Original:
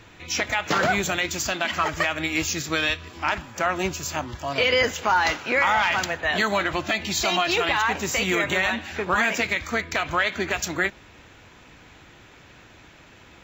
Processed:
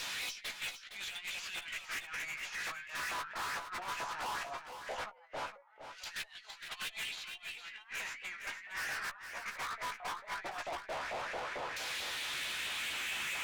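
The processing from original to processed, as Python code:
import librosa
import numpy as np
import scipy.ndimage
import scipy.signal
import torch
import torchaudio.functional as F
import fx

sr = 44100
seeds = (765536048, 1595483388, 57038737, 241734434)

y = fx.cvsd(x, sr, bps=64000)
y = fx.filter_lfo_highpass(y, sr, shape='saw_up', hz=4.5, low_hz=520.0, high_hz=2300.0, q=2.0)
y = fx.over_compress(y, sr, threshold_db=-39.0, ratio=-0.5)
y = np.clip(10.0 ** (29.5 / 20.0) * y, -1.0, 1.0) / 10.0 ** (29.5 / 20.0)
y = fx.filter_lfo_bandpass(y, sr, shape='saw_down', hz=0.17, low_hz=450.0, high_hz=5100.0, q=2.0)
y = fx.dynamic_eq(y, sr, hz=5400.0, q=1.3, threshold_db=-55.0, ratio=4.0, max_db=-5)
y = fx.tube_stage(y, sr, drive_db=53.0, bias=0.25)
y = fx.doubler(y, sr, ms=14.0, db=-7)
y = y + 10.0 ** (-9.5 / 20.0) * np.pad(y, (int(462 * sr / 1000.0), 0))[:len(y)]
y = y * 10.0 ** (14.5 / 20.0)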